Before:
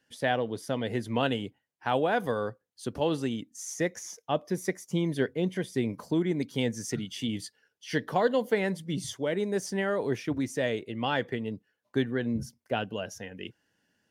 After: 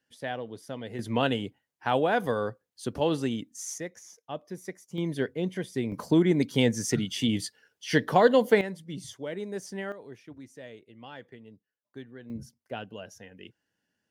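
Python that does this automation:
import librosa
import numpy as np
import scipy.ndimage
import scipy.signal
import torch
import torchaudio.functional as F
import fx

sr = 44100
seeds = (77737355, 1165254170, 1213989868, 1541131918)

y = fx.gain(x, sr, db=fx.steps((0.0, -7.0), (0.99, 1.5), (3.78, -8.5), (4.98, -1.5), (5.92, 5.5), (8.61, -6.0), (9.92, -16.0), (12.3, -7.0)))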